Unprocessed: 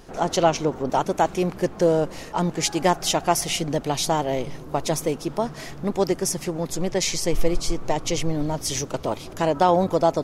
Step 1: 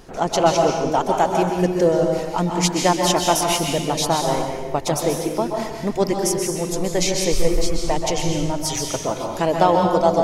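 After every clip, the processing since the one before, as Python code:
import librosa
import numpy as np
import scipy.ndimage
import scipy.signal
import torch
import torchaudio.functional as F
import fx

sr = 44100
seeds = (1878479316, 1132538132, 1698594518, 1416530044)

y = fx.dereverb_blind(x, sr, rt60_s=1.4)
y = fx.rev_plate(y, sr, seeds[0], rt60_s=1.3, hf_ratio=0.85, predelay_ms=115, drr_db=1.5)
y = F.gain(torch.from_numpy(y), 2.0).numpy()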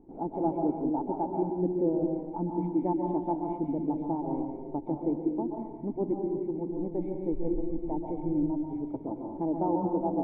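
y = fx.formant_cascade(x, sr, vowel='u')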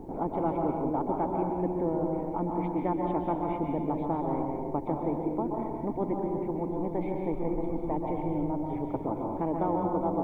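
y = fx.spectral_comp(x, sr, ratio=2.0)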